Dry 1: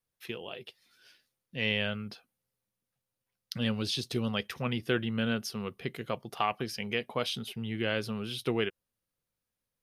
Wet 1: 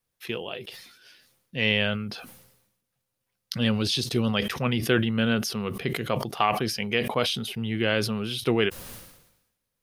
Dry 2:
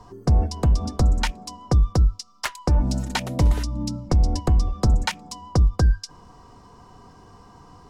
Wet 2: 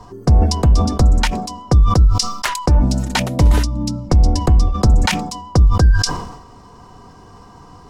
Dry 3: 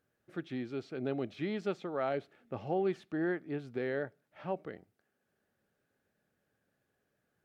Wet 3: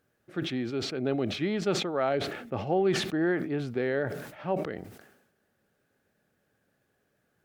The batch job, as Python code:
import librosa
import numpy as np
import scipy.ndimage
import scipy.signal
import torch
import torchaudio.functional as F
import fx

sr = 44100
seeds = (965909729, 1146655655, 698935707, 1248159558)

y = fx.sustainer(x, sr, db_per_s=63.0)
y = y * librosa.db_to_amplitude(6.0)